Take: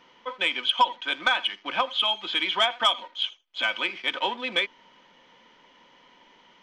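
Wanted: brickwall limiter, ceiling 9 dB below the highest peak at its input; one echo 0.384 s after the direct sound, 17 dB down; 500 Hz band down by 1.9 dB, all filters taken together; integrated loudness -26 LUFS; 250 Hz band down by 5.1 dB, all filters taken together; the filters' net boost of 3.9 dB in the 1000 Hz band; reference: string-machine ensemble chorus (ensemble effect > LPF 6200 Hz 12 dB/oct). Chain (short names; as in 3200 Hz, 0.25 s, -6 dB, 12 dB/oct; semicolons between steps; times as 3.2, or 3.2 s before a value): bell 250 Hz -5.5 dB; bell 500 Hz -4 dB; bell 1000 Hz +5.5 dB; limiter -15 dBFS; echo 0.384 s -17 dB; ensemble effect; LPF 6200 Hz 12 dB/oct; gain +3.5 dB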